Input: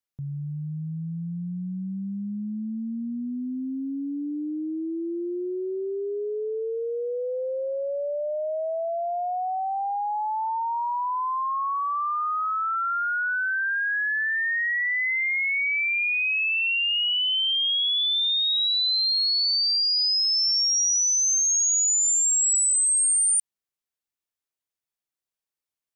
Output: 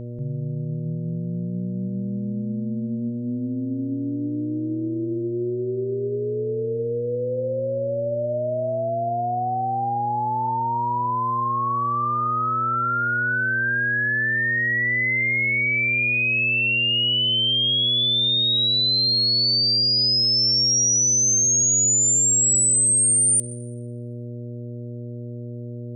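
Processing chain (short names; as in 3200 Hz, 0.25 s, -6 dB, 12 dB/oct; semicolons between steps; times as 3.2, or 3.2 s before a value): buzz 120 Hz, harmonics 5, -36 dBFS -6 dB/oct; plate-style reverb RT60 1.5 s, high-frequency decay 0.55×, pre-delay 0.11 s, DRR 19 dB; gain +3 dB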